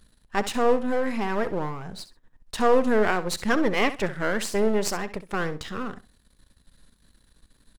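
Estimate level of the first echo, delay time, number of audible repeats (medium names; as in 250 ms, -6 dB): -14.0 dB, 65 ms, 2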